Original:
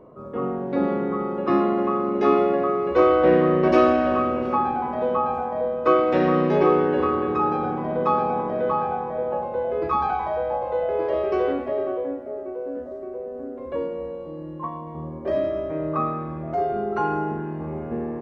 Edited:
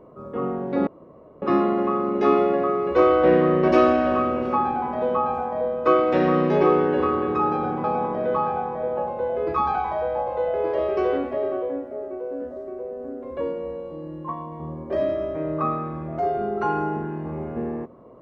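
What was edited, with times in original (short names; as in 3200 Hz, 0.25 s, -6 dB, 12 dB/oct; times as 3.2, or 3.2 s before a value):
0.87–1.42 room tone
7.84–8.19 cut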